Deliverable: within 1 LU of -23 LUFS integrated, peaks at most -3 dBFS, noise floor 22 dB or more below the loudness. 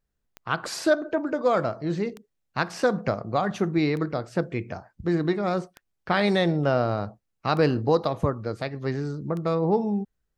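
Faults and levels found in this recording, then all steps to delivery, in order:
clicks 6; loudness -26.0 LUFS; peak -9.0 dBFS; loudness target -23.0 LUFS
-> de-click; gain +3 dB

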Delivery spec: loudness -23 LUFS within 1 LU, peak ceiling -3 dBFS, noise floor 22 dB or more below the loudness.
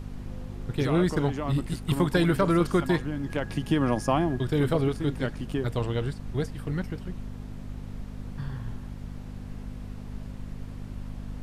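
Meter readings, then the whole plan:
hum 50 Hz; harmonics up to 250 Hz; hum level -36 dBFS; noise floor -40 dBFS; noise floor target -50 dBFS; loudness -27.5 LUFS; peak -10.0 dBFS; loudness target -23.0 LUFS
-> de-hum 50 Hz, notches 5; noise print and reduce 10 dB; gain +4.5 dB

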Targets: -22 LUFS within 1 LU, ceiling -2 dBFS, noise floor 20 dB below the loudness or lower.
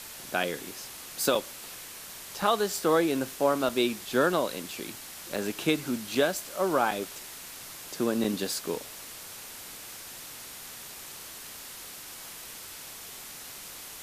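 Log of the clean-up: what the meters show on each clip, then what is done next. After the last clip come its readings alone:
dropouts 8; longest dropout 3.4 ms; noise floor -44 dBFS; noise floor target -51 dBFS; loudness -31.0 LUFS; peak -12.0 dBFS; loudness target -22.0 LUFS
-> interpolate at 0.43/1.35/2.42/3.69/5.36/6.15/6.91/8.24, 3.4 ms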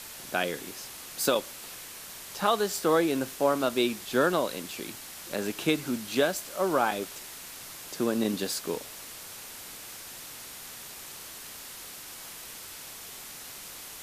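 dropouts 0; noise floor -44 dBFS; noise floor target -51 dBFS
-> denoiser 7 dB, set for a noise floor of -44 dBFS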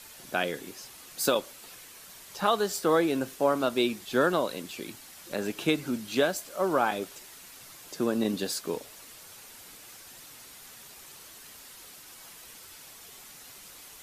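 noise floor -49 dBFS; loudness -29.0 LUFS; peak -12.0 dBFS; loudness target -22.0 LUFS
-> gain +7 dB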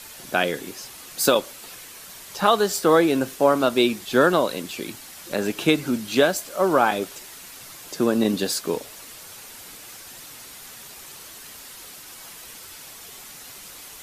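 loudness -22.0 LUFS; peak -5.0 dBFS; noise floor -42 dBFS

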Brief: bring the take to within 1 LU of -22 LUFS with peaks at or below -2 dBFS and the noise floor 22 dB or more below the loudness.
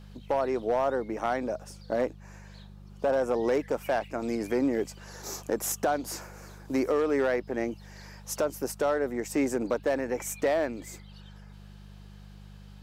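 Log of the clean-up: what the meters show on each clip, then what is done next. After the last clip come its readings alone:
clipped 0.5%; flat tops at -19.0 dBFS; hum 50 Hz; harmonics up to 200 Hz; hum level -46 dBFS; loudness -29.5 LUFS; peak -19.0 dBFS; loudness target -22.0 LUFS
-> clip repair -19 dBFS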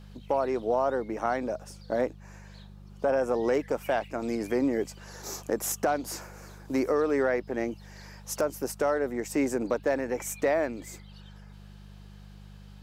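clipped 0.0%; hum 50 Hz; harmonics up to 200 Hz; hum level -46 dBFS
-> de-hum 50 Hz, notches 4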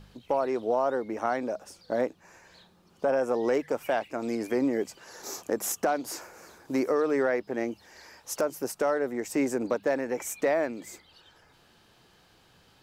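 hum none; loudness -29.5 LUFS; peak -13.5 dBFS; loudness target -22.0 LUFS
-> gain +7.5 dB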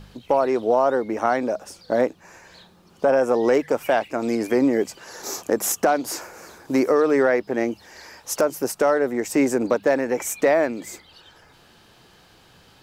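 loudness -22.0 LUFS; peak -6.0 dBFS; noise floor -54 dBFS

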